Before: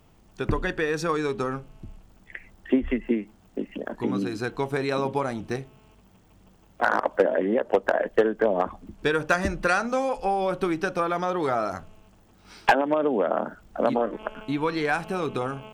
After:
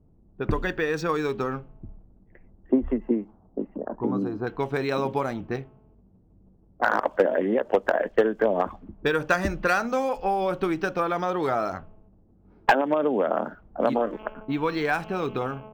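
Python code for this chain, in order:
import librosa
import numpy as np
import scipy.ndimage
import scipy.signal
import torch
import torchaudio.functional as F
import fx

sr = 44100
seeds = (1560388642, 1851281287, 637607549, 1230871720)

y = fx.high_shelf_res(x, sr, hz=1500.0, db=-13.5, q=1.5, at=(2.72, 4.47))
y = fx.env_lowpass(y, sr, base_hz=360.0, full_db=-21.0)
y = np.interp(np.arange(len(y)), np.arange(len(y))[::2], y[::2])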